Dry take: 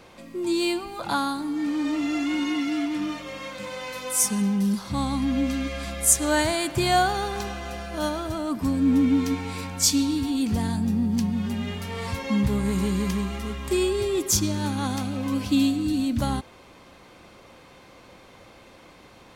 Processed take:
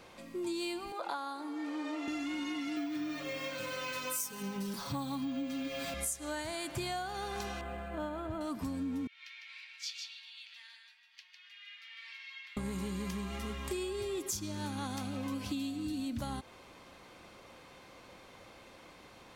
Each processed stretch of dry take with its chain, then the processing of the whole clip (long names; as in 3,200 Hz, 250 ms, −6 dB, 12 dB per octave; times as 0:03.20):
0:00.92–0:02.08: high-pass filter 390 Hz 24 dB per octave + spectral tilt −2.5 dB per octave
0:02.76–0:05.94: comb filter 7.1 ms, depth 98% + bad sample-rate conversion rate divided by 2×, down filtered, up hold
0:07.61–0:08.41: high-frequency loss of the air 360 metres + linearly interpolated sample-rate reduction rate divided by 4×
0:09.07–0:12.57: inverse Chebyshev high-pass filter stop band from 460 Hz, stop band 70 dB + high-frequency loss of the air 300 metres + single-tap delay 153 ms −5.5 dB
whole clip: low-shelf EQ 430 Hz −3.5 dB; downward compressor 10 to 1, threshold −30 dBFS; level −4 dB